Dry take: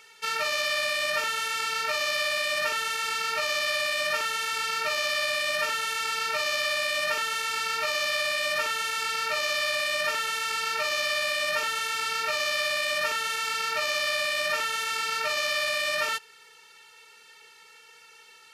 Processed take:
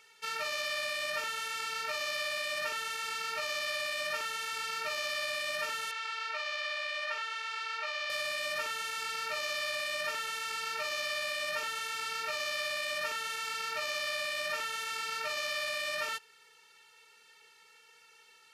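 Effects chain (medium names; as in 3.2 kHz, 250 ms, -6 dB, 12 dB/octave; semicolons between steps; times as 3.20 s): 5.91–8.10 s: band-pass 640–4200 Hz; trim -7.5 dB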